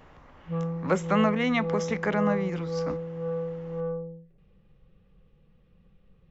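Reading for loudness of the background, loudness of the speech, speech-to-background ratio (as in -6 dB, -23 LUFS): -32.5 LUFS, -27.5 LUFS, 5.0 dB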